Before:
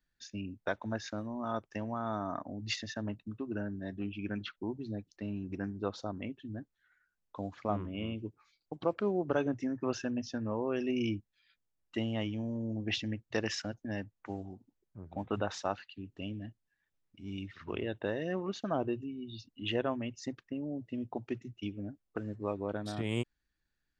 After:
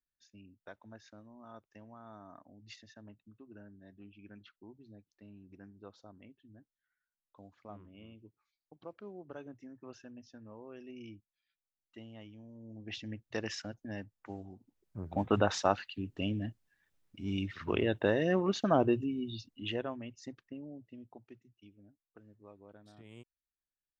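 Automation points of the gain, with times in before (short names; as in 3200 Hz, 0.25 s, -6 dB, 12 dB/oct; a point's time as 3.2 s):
12.53 s -16 dB
13.2 s -4 dB
14.52 s -4 dB
14.99 s +6 dB
19.19 s +6 dB
19.93 s -6.5 dB
20.53 s -6.5 dB
21.51 s -19.5 dB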